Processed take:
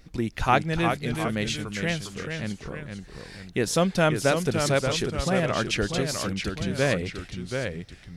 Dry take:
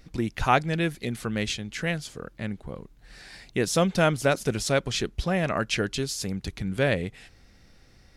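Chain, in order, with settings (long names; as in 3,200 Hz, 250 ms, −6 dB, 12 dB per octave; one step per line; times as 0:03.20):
floating-point word with a short mantissa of 8 bits
delay with pitch and tempo change per echo 327 ms, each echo −1 semitone, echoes 2, each echo −6 dB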